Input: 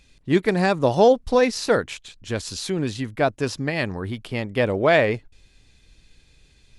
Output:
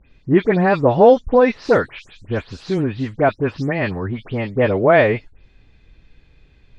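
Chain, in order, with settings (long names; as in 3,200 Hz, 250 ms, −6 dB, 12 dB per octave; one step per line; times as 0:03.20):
every frequency bin delayed by itself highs late, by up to 131 ms
low-pass filter 2,200 Hz 12 dB per octave
level +5 dB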